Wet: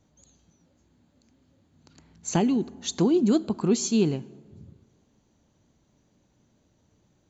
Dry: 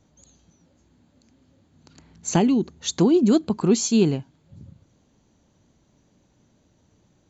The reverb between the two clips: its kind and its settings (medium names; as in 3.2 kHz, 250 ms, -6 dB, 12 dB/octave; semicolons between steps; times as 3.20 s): plate-style reverb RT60 1.7 s, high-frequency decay 0.55×, DRR 19 dB; trim -4 dB